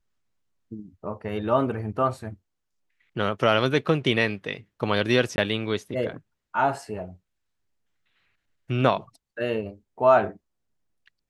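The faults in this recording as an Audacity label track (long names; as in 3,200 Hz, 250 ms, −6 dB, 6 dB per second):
5.360000	5.380000	drop-out 20 ms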